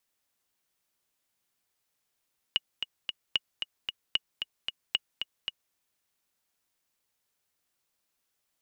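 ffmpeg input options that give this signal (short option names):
-f lavfi -i "aevalsrc='pow(10,(-11.5-7*gte(mod(t,3*60/226),60/226))/20)*sin(2*PI*2890*mod(t,60/226))*exp(-6.91*mod(t,60/226)/0.03)':d=3.18:s=44100"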